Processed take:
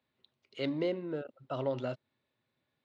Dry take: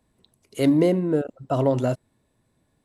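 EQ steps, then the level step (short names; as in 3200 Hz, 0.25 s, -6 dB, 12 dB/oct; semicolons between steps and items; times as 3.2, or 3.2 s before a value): dynamic EQ 2100 Hz, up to -3 dB, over -45 dBFS, Q 1.2; speaker cabinet 120–4100 Hz, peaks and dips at 190 Hz -9 dB, 300 Hz -8 dB, 450 Hz -7 dB, 700 Hz -9 dB, 1000 Hz -7 dB, 1700 Hz -4 dB; low shelf 270 Hz -11.5 dB; -3.0 dB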